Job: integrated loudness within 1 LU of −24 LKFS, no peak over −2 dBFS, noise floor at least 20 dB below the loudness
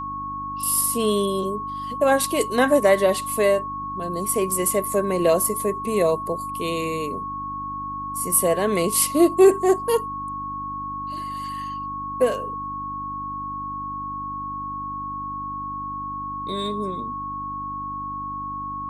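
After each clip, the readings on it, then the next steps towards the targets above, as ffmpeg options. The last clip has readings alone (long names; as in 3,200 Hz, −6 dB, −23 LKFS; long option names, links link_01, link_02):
mains hum 50 Hz; hum harmonics up to 300 Hz; level of the hum −37 dBFS; interfering tone 1,100 Hz; level of the tone −28 dBFS; integrated loudness −23.5 LKFS; sample peak −5.0 dBFS; target loudness −24.0 LKFS
→ -af "bandreject=frequency=50:width_type=h:width=4,bandreject=frequency=100:width_type=h:width=4,bandreject=frequency=150:width_type=h:width=4,bandreject=frequency=200:width_type=h:width=4,bandreject=frequency=250:width_type=h:width=4,bandreject=frequency=300:width_type=h:width=4"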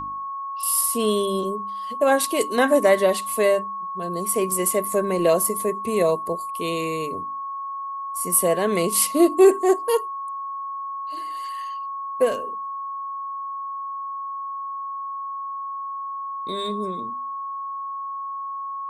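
mains hum none found; interfering tone 1,100 Hz; level of the tone −28 dBFS
→ -af "bandreject=frequency=1100:width=30"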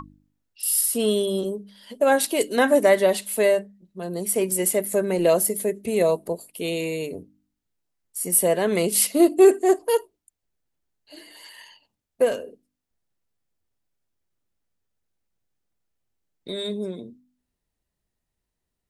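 interfering tone none found; integrated loudness −21.5 LKFS; sample peak −5.5 dBFS; target loudness −24.0 LKFS
→ -af "volume=-2.5dB"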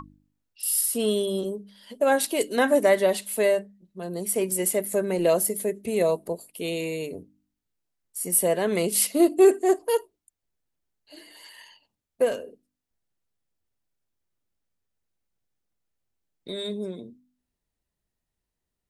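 integrated loudness −24.0 LKFS; sample peak −8.0 dBFS; background noise floor −85 dBFS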